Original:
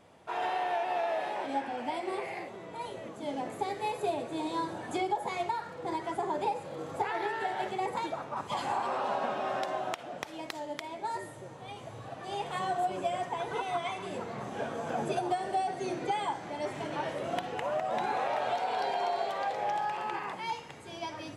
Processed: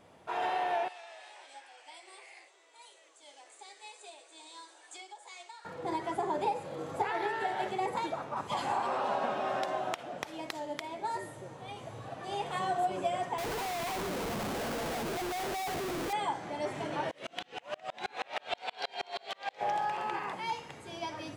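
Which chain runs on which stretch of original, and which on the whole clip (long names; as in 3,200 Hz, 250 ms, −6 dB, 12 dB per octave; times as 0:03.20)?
0:00.88–0:05.65: linear-phase brick-wall band-pass 280–9,900 Hz + first difference
0:13.38–0:16.13: Chebyshev high-pass filter 180 Hz + high-shelf EQ 2,800 Hz −8.5 dB + comparator with hysteresis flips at −47.5 dBFS
0:17.11–0:19.61: meter weighting curve D + tremolo with a ramp in dB swelling 6.3 Hz, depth 36 dB
whole clip: no processing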